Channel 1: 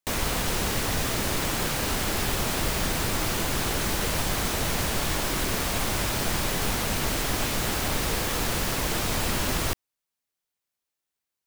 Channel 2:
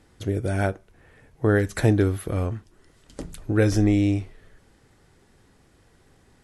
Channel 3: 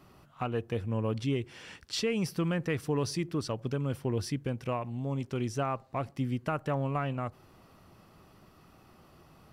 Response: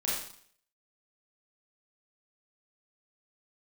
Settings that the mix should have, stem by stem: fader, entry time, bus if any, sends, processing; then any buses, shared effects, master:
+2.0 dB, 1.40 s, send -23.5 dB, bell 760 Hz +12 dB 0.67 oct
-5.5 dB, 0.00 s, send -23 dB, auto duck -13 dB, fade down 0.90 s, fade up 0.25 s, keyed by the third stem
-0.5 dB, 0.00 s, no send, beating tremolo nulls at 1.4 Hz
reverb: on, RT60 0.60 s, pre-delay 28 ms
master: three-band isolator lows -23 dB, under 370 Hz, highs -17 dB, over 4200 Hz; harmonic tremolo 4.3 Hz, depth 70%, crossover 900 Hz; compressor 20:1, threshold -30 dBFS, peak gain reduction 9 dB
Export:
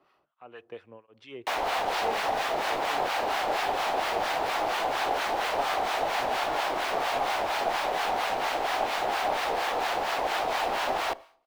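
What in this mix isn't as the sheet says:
stem 2: muted; master: missing compressor 20:1, threshold -30 dBFS, peak gain reduction 9 dB

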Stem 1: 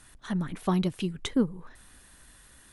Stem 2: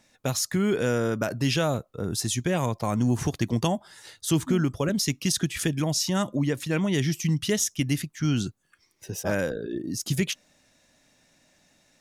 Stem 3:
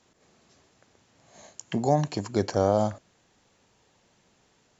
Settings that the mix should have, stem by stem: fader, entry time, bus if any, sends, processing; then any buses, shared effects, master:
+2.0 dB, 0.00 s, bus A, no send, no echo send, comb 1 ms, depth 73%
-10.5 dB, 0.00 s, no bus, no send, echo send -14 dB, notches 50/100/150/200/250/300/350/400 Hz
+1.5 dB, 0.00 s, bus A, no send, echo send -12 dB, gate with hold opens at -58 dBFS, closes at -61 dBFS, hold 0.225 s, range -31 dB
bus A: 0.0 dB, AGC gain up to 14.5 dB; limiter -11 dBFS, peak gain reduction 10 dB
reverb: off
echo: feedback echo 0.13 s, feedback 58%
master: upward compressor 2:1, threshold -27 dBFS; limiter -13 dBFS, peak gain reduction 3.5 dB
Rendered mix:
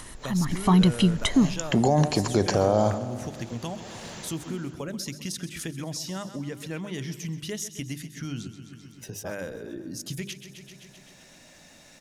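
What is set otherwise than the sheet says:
stem 1 +2.0 dB -> -5.0 dB; master: missing limiter -13 dBFS, peak gain reduction 3.5 dB

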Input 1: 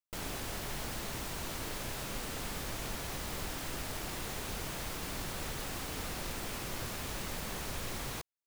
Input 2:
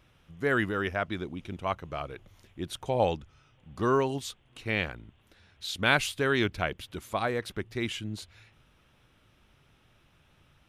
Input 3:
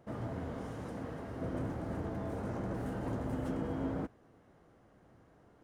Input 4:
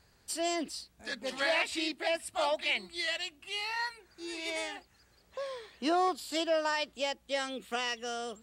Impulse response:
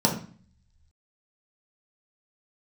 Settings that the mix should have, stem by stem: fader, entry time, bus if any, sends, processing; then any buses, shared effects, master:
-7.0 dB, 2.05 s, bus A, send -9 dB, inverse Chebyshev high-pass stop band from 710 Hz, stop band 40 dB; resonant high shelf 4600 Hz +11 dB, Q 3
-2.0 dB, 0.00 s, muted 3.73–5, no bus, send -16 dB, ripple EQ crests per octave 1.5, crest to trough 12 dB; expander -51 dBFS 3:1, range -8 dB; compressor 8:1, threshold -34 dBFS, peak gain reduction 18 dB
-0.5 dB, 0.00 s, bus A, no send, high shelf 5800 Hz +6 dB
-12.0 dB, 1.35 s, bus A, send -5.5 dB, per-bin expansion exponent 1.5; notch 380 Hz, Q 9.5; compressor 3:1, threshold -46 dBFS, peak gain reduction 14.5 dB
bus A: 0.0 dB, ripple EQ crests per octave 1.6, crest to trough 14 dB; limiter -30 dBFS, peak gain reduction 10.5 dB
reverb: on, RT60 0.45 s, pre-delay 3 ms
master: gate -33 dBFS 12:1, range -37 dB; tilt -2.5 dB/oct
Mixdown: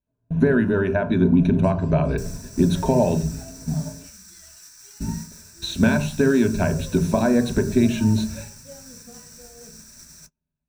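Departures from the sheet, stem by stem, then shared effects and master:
stem 2 -2.0 dB -> +9.5 dB; stem 3 -0.5 dB -> -8.5 dB

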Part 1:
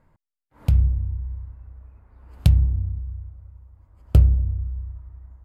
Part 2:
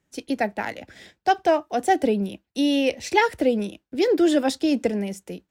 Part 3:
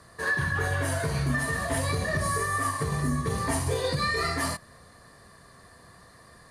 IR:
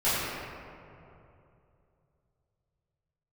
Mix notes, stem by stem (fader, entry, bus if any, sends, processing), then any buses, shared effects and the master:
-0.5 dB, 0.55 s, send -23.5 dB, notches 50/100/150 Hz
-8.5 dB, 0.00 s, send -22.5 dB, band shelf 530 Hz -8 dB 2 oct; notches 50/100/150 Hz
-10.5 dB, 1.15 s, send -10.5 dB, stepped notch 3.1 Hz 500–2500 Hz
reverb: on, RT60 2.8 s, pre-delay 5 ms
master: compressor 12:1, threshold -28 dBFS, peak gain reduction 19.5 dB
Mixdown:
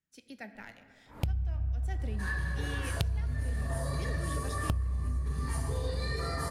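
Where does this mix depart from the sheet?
stem 1: missing notches 50/100/150 Hz; stem 2 -8.5 dB -> -17.0 dB; stem 3: entry 1.15 s -> 2.00 s

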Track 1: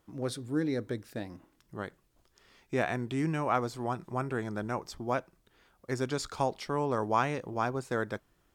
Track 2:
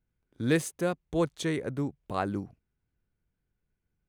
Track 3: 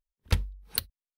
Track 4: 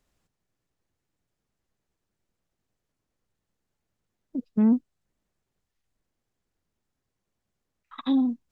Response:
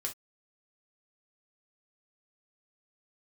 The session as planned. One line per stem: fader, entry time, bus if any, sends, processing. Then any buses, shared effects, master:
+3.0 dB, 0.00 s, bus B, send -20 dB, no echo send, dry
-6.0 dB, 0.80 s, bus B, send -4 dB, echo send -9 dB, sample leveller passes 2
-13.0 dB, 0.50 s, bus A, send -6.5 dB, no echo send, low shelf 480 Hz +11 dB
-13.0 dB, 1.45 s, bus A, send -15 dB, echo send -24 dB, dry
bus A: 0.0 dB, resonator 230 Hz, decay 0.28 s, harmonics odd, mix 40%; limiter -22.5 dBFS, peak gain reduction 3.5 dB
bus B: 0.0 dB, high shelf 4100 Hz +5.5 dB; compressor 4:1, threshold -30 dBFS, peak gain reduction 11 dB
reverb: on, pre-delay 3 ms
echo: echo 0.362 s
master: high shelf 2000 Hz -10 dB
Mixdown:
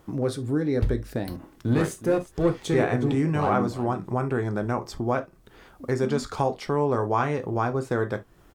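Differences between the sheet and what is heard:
stem 1 +3.0 dB -> +14.5 dB; stem 2: entry 0.80 s -> 1.25 s; reverb return +7.5 dB

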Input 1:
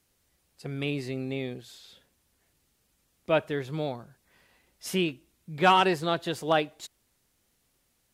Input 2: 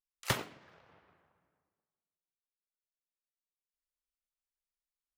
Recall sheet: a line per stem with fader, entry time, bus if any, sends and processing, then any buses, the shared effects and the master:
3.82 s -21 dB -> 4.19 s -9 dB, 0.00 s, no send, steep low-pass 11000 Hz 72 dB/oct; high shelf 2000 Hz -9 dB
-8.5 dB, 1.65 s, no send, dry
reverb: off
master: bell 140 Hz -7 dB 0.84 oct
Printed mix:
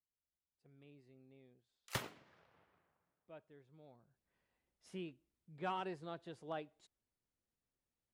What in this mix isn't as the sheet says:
stem 1 -21.0 dB -> -30.5 dB; master: missing bell 140 Hz -7 dB 0.84 oct

